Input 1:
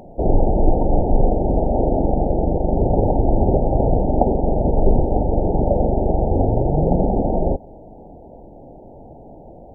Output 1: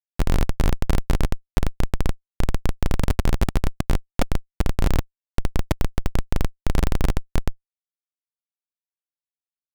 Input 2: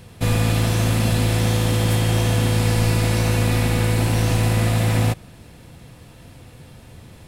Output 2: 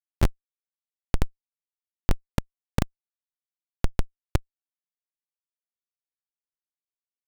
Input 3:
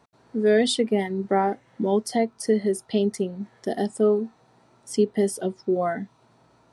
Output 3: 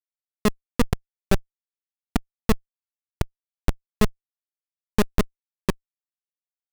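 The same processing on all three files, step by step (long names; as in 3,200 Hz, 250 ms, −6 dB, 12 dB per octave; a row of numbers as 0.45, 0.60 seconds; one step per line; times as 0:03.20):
downsampling to 8,000 Hz
transient designer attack +10 dB, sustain −11 dB
comparator with hysteresis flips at −7 dBFS
normalise the peak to −9 dBFS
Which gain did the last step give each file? −1.0, +3.5, +5.0 decibels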